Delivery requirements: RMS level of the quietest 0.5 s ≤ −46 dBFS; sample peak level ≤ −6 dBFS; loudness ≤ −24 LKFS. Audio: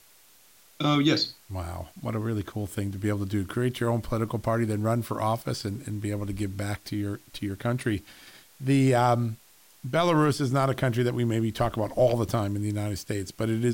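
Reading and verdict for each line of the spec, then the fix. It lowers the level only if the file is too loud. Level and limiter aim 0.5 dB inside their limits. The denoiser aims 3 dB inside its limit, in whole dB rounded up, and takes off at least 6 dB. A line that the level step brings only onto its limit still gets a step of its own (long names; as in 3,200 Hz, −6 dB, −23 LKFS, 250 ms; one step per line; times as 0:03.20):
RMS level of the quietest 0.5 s −56 dBFS: in spec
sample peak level −11.0 dBFS: in spec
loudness −27.5 LKFS: in spec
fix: no processing needed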